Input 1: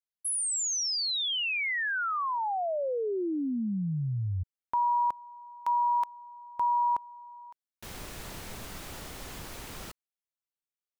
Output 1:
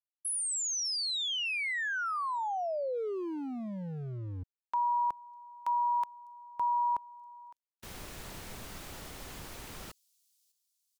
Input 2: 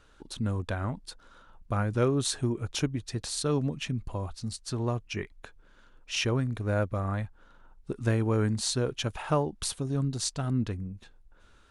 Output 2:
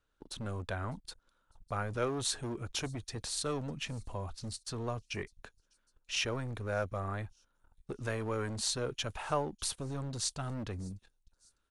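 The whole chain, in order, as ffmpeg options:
ffmpeg -i in.wav -filter_complex "[0:a]agate=range=-17dB:threshold=-52dB:ratio=16:release=48:detection=peak,acrossover=split=470|4300[link_01][link_02][link_03];[link_01]volume=34.5dB,asoftclip=hard,volume=-34.5dB[link_04];[link_03]aecho=1:1:602|1204|1806:0.0794|0.0373|0.0175[link_05];[link_04][link_02][link_05]amix=inputs=3:normalize=0,volume=-3dB" out.wav

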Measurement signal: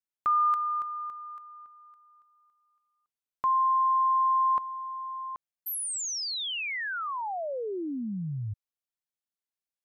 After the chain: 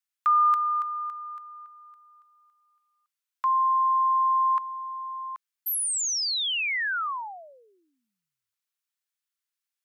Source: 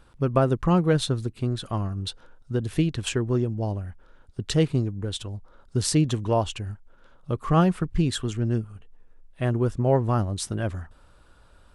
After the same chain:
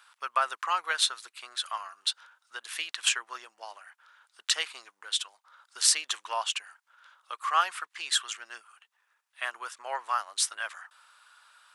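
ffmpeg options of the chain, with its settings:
ffmpeg -i in.wav -af "highpass=frequency=1100:width=0.5412,highpass=frequency=1100:width=1.3066,volume=5.5dB" out.wav

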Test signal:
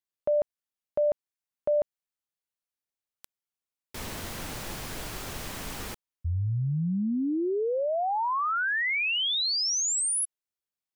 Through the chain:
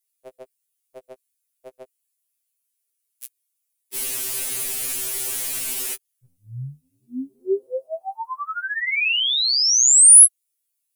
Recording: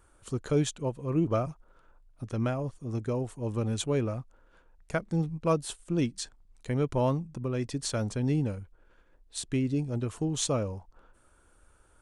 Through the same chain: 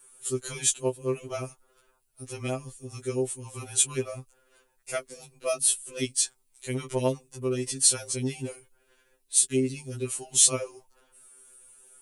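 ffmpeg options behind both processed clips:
ffmpeg -i in.wav -af "crystalizer=i=8:c=0,equalizer=frequency=160:width_type=o:width=0.67:gain=-4,equalizer=frequency=400:width_type=o:width=0.67:gain=11,equalizer=frequency=2500:width_type=o:width=0.67:gain=5,equalizer=frequency=10000:width_type=o:width=0.67:gain=8,afftfilt=real='re*2.45*eq(mod(b,6),0)':imag='im*2.45*eq(mod(b,6),0)':win_size=2048:overlap=0.75,volume=-6dB" out.wav

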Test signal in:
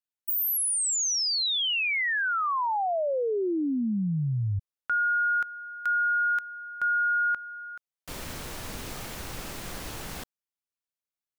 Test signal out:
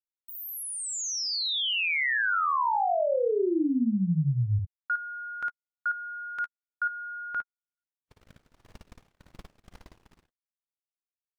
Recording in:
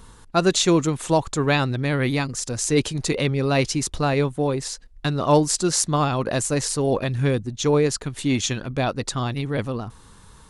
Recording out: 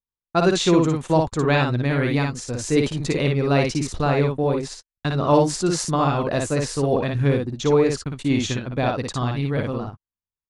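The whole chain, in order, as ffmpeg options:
ffmpeg -i in.wav -af "agate=range=-54dB:threshold=-36dB:ratio=16:release=37:detection=peak,aemphasis=mode=reproduction:type=50kf,aecho=1:1:57|69:0.668|0.15" out.wav

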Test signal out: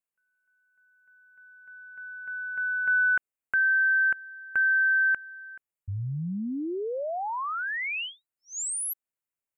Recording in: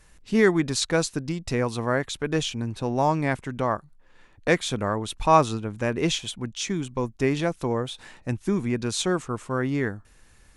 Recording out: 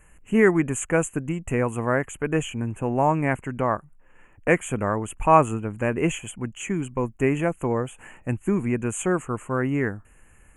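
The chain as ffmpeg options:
ffmpeg -i in.wav -af "asuperstop=centerf=4500:order=12:qfactor=1.2,volume=1.5dB" out.wav

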